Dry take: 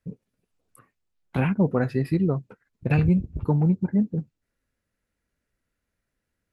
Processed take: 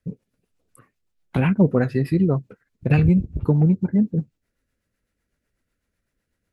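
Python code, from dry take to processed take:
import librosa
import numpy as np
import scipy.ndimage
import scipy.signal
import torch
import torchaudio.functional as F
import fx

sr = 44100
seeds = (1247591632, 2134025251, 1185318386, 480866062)

y = fx.rotary(x, sr, hz=8.0)
y = F.gain(torch.from_numpy(y), 5.5).numpy()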